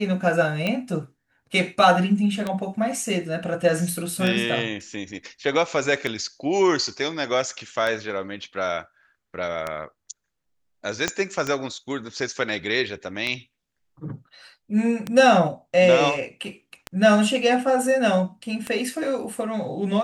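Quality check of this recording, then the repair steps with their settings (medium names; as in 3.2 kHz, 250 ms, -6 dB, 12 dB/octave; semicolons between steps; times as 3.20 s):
tick 33 1/3 rpm -12 dBFS
11.08 s: pop -8 dBFS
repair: de-click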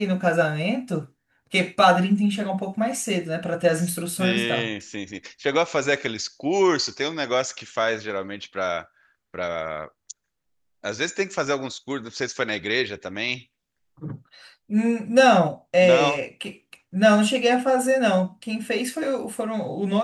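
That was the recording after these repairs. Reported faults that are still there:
11.08 s: pop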